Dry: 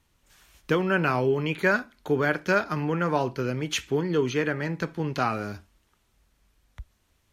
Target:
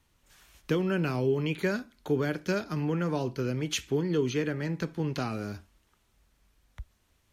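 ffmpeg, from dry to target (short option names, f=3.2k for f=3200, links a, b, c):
-filter_complex "[0:a]acrossover=split=470|3000[a][b][c];[b]acompressor=threshold=-41dB:ratio=2.5[d];[a][d][c]amix=inputs=3:normalize=0,volume=-1dB"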